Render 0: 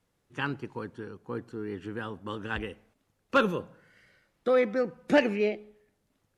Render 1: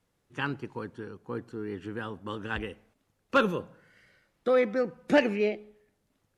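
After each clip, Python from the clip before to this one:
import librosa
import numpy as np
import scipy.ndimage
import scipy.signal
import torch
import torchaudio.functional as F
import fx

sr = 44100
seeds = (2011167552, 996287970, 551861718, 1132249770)

y = x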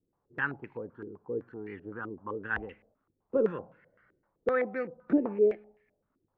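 y = fx.filter_held_lowpass(x, sr, hz=7.8, low_hz=350.0, high_hz=2200.0)
y = F.gain(torch.from_numpy(y), -7.0).numpy()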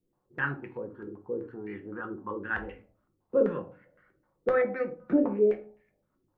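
y = fx.room_shoebox(x, sr, seeds[0], volume_m3=140.0, walls='furnished', distance_m=0.95)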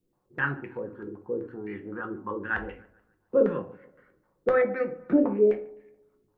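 y = fx.echo_wet_lowpass(x, sr, ms=144, feedback_pct=43, hz=2400.0, wet_db=-22.5)
y = F.gain(torch.from_numpy(y), 2.5).numpy()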